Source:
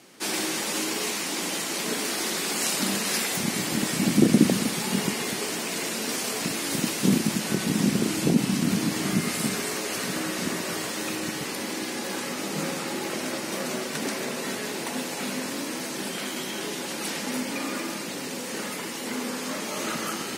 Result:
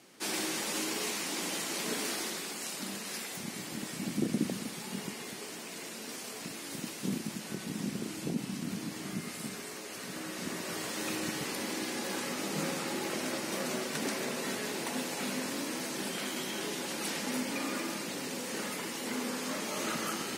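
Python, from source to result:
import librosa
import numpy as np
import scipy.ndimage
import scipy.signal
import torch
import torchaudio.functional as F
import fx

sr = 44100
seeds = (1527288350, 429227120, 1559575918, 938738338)

y = fx.gain(x, sr, db=fx.line((2.1, -6.0), (2.6, -13.0), (9.93, -13.0), (11.12, -4.5)))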